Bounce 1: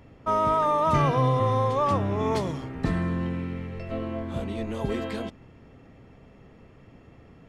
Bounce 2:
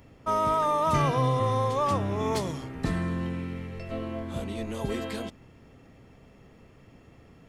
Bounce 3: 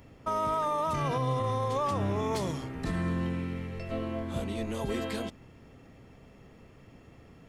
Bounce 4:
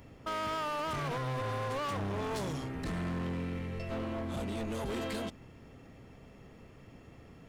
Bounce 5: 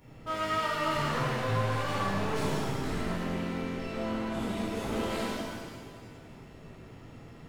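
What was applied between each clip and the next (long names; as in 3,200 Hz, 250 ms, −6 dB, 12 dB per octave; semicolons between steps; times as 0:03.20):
high-shelf EQ 5,100 Hz +11.5 dB; level −2.5 dB
brickwall limiter −21.5 dBFS, peak gain reduction 10 dB
hard clipping −33 dBFS, distortion −8 dB
reverb with rising layers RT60 1.7 s, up +7 semitones, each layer −8 dB, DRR −10 dB; level −6.5 dB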